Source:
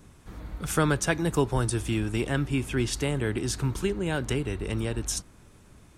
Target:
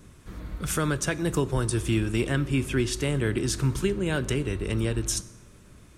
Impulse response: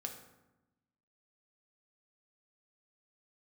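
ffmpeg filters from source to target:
-filter_complex "[0:a]equalizer=f=810:w=3.6:g=-7,alimiter=limit=-16.5dB:level=0:latency=1:release=258,asplit=2[a][b];[1:a]atrim=start_sample=2205,afade=t=out:st=0.38:d=0.01,atrim=end_sample=17199,asetrate=32193,aresample=44100[c];[b][c]afir=irnorm=-1:irlink=0,volume=-9dB[d];[a][d]amix=inputs=2:normalize=0"

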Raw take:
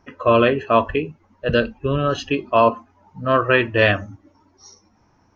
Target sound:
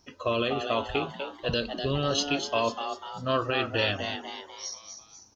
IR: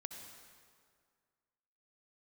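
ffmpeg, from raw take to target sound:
-filter_complex "[0:a]highshelf=f=2.8k:t=q:w=1.5:g=13.5,alimiter=limit=-8.5dB:level=0:latency=1:release=138,asplit=6[a][b][c][d][e][f];[b]adelay=247,afreqshift=140,volume=-7dB[g];[c]adelay=494,afreqshift=280,volume=-13.7dB[h];[d]adelay=741,afreqshift=420,volume=-20.5dB[i];[e]adelay=988,afreqshift=560,volume=-27.2dB[j];[f]adelay=1235,afreqshift=700,volume=-34dB[k];[a][g][h][i][j][k]amix=inputs=6:normalize=0,volume=-7.5dB"

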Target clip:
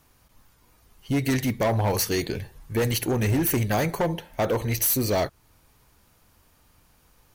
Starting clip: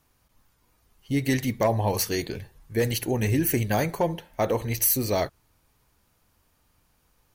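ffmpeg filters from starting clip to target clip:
-filter_complex "[0:a]asplit=2[a][b];[b]acompressor=threshold=-36dB:ratio=5,volume=-1dB[c];[a][c]amix=inputs=2:normalize=0,asoftclip=type=hard:threshold=-20dB,volume=1dB"

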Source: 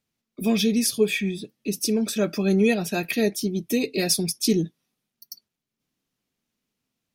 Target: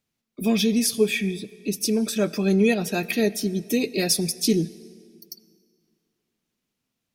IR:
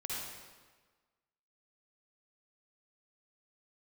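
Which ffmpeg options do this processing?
-filter_complex "[0:a]asplit=2[a][b];[1:a]atrim=start_sample=2205,asetrate=27342,aresample=44100[c];[b][c]afir=irnorm=-1:irlink=0,volume=-23.5dB[d];[a][d]amix=inputs=2:normalize=0"

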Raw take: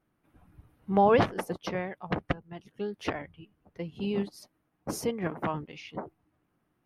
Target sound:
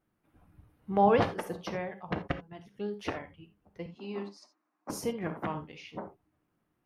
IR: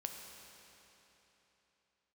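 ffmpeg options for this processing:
-filter_complex "[0:a]asettb=1/sr,asplit=3[a][b][c];[a]atrim=end=3.864[d];[b]atrim=start=3.86:end=4.9,asetpts=PTS-STARTPTS,afade=t=in:d=0.004:c=qsin,afade=t=out:st=1.036:d=0.004:c=qsin,highpass=f=270:w=0.5412,highpass=f=270:w=1.3066,equalizer=f=470:t=q:w=4:g=-10,equalizer=f=1.1k:t=q:w=4:g=7,equalizer=f=3.2k:t=q:w=4:g=-9,lowpass=f=6.8k:w=0.5412,lowpass=f=6.8k:w=1.3066[e];[c]atrim=start=4.896[f];[d][e]acrossfade=d=0.004:c1=hsin:c2=qsin[g];[g][f]acrossfade=d=0.004:c1=qsin:c2=hsin[h];[1:a]atrim=start_sample=2205,atrim=end_sample=3969[i];[h][i]afir=irnorm=-1:irlink=0"

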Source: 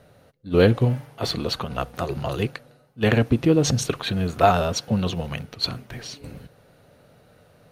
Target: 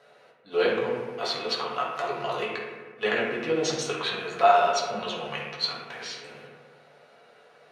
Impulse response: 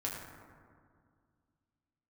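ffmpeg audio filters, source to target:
-filter_complex "[0:a]asplit=2[a][b];[b]acompressor=threshold=-28dB:ratio=6,volume=1dB[c];[a][c]amix=inputs=2:normalize=0,highpass=610,lowpass=6.2k[d];[1:a]atrim=start_sample=2205,asetrate=66150,aresample=44100[e];[d][e]afir=irnorm=-1:irlink=0,volume=-1.5dB"

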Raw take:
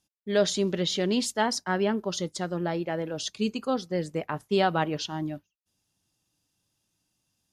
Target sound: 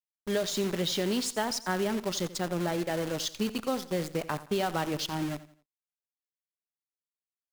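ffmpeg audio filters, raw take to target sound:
-af "acompressor=threshold=-25dB:ratio=10,acrusher=bits=7:dc=4:mix=0:aa=0.000001,aecho=1:1:86|172|258:0.158|0.0555|0.0194"

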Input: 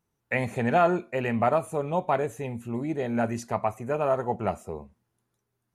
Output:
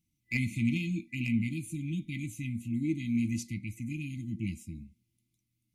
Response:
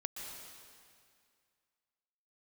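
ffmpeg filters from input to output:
-filter_complex "[0:a]afftfilt=real='re*(1-between(b*sr/4096,340,2000))':imag='im*(1-between(b*sr/4096,340,2000))':win_size=4096:overlap=0.75,acrossover=split=1700[a][b];[b]aeval=exprs='clip(val(0),-1,0.0251)':c=same[c];[a][c]amix=inputs=2:normalize=0"

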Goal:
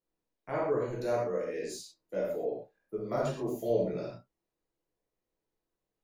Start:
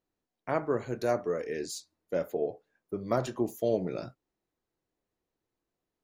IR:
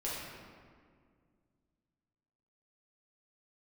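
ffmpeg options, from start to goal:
-filter_complex "[0:a]asettb=1/sr,asplit=3[a][b][c];[a]atrim=end=1.264[d];[b]atrim=start=1.26:end=3.52,asetpts=PTS-STARTPTS,afade=t=in:d=0.004:c=qsin,afade=t=out:st=2.256:d=0.004:c=qsin,afreqshift=14[e];[c]atrim=start=3.516[f];[d][e]acrossfade=d=0.004:c1=hsin:c2=qsin[g];[g][f]acrossfade=d=0.004:c1=qsin:c2=hsin[h];[1:a]atrim=start_sample=2205,atrim=end_sample=6174[i];[h][i]afir=irnorm=-1:irlink=0,volume=-4.5dB"

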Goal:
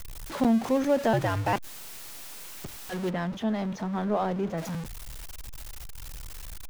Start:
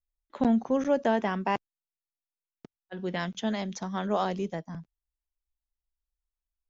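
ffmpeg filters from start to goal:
-filter_complex "[0:a]aeval=exprs='val(0)+0.5*0.0266*sgn(val(0))':c=same,asettb=1/sr,asplit=3[a][b][c];[a]atrim=end=1.134[d];[b]atrim=start=1.13:end=1.53,asetpts=PTS-STARTPTS,afade=t=in:d=0.004:c=qsin,afade=t=out:st=0.396:d=0.004:c=qsin,afreqshift=-86[e];[c]atrim=start=1.526[f];[d][e]acrossfade=d=0.004:c1=hsin:c2=qsin[g];[g][f]acrossfade=d=0.004:c1=qsin:c2=hsin,asplit=3[h][i][j];[h]afade=t=out:st=3.09:d=0.02[k];[i]lowpass=f=1.2k:p=1,afade=t=in:st=3.09:d=0.02,afade=t=out:st=4.57:d=0.02[l];[j]afade=t=in:st=4.57:d=0.02[m];[k][l][m]amix=inputs=3:normalize=0"

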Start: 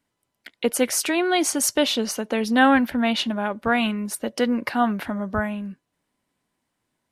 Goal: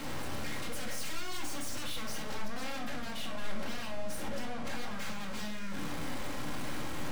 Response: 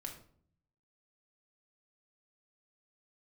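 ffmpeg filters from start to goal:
-filter_complex "[0:a]aeval=exprs='val(0)+0.5*0.0944*sgn(val(0))':c=same,lowpass=f=1.2k:p=1,acompressor=threshold=-22dB:ratio=2.5,asettb=1/sr,asplit=3[a][b][c];[a]atrim=end=2.344[d];[b]atrim=start=2.34:end=4.91,asetpts=PTS-STARTPTS,afade=t=in:d=0.004:c=qsin,afade=t=out:st=2.566:d=0.004:c=qsin,flanger=delay=6.5:depth=4:regen=-83:speed=1.5:shape=triangular[e];[c]atrim=start=4.906[f];[d][e]acrossfade=d=0.004:c1=hsin:c2=qsin[g];[g][f]acrossfade=d=0.004:c1=qsin:c2=hsin,aeval=exprs='0.0251*(abs(mod(val(0)/0.0251+3,4)-2)-1)':c=same,aeval=exprs='val(0)+0.00282*(sin(2*PI*60*n/s)+sin(2*PI*2*60*n/s)/2+sin(2*PI*3*60*n/s)/3+sin(2*PI*4*60*n/s)/4+sin(2*PI*5*60*n/s)/5)':c=same,aeval=exprs='(tanh(224*val(0)+0.5)-tanh(0.5))/224':c=same[h];[1:a]atrim=start_sample=2205[i];[h][i]afir=irnorm=-1:irlink=0,volume=10dB"

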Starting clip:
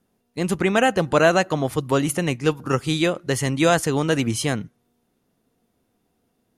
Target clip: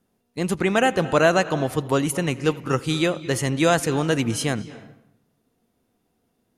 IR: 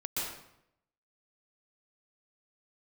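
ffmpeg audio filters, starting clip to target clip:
-filter_complex "[0:a]asplit=2[a][b];[1:a]atrim=start_sample=2205,lowpass=5.6k,adelay=83[c];[b][c]afir=irnorm=-1:irlink=0,volume=-19.5dB[d];[a][d]amix=inputs=2:normalize=0,volume=-1dB"

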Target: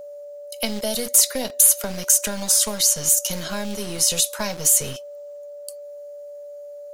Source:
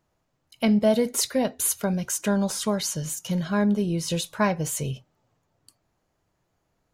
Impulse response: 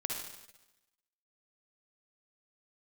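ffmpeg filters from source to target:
-filter_complex "[0:a]acrossover=split=240|560|2900[a][b][c][d];[a]acompressor=threshold=-33dB:ratio=4[e];[b]acompressor=threshold=-33dB:ratio=4[f];[c]acompressor=threshold=-37dB:ratio=4[g];[d]acompressor=threshold=-32dB:ratio=4[h];[e][f][g][h]amix=inputs=4:normalize=0,acrossover=split=360|6200[i][j][k];[i]acrusher=bits=4:dc=4:mix=0:aa=0.000001[l];[k]aemphasis=mode=production:type=75kf[m];[l][j][m]amix=inputs=3:normalize=0,aeval=exprs='val(0)+0.0126*sin(2*PI*580*n/s)':c=same,equalizer=f=5.1k:t=o:w=1.6:g=9,volume=3dB"

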